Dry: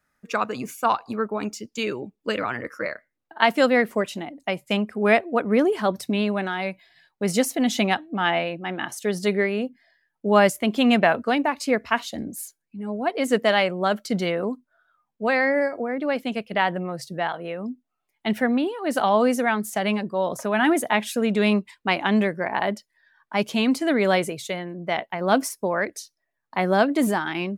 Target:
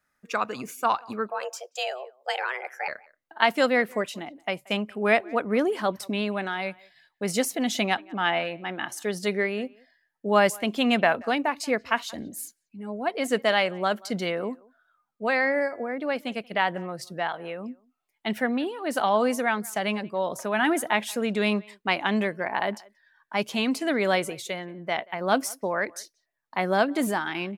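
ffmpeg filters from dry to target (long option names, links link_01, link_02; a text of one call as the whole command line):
ffmpeg -i in.wav -filter_complex "[0:a]lowshelf=frequency=440:gain=-5,asettb=1/sr,asplit=3[link_01][link_02][link_03];[link_01]atrim=end=1.304[link_04];[link_02]atrim=start=1.3:end=2.88,asetpts=PTS-STARTPTS,afade=type=in:duration=0.004:curve=qsin,afade=type=out:start_time=1.576:duration=0.004:curve=qsin,afreqshift=260[link_05];[link_03]atrim=start=2.876[link_06];[link_04][link_05]acrossfade=duration=0.004:curve1=hsin:curve2=qsin[link_07];[link_07][link_06]acrossfade=duration=0.004:curve1=qsin:curve2=hsin,asplit=2[link_08][link_09];[link_09]adelay=180,highpass=300,lowpass=3400,asoftclip=type=hard:threshold=-10.5dB,volume=-24dB[link_10];[link_08][link_10]amix=inputs=2:normalize=0,volume=-1.5dB" out.wav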